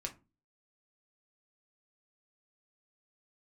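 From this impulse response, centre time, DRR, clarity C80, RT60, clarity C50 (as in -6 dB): 10 ms, 1.5 dB, 24.0 dB, 0.30 s, 15.5 dB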